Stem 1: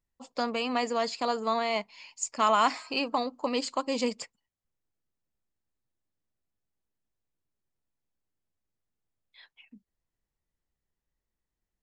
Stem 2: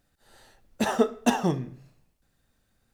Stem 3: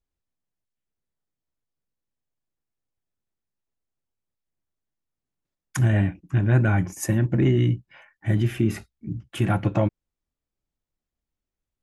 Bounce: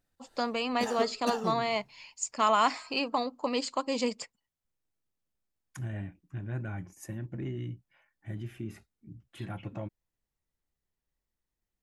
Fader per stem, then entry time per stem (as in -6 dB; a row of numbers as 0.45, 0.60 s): -1.0, -10.5, -17.0 dB; 0.00, 0.00, 0.00 s